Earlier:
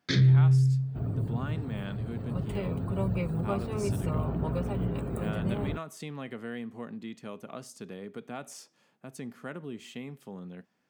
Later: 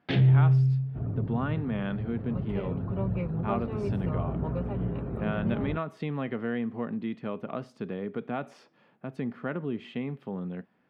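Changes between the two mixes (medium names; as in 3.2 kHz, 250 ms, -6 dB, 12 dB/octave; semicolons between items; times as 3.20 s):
speech +8.0 dB; first sound: remove static phaser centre 2.8 kHz, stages 6; master: add distance through air 390 m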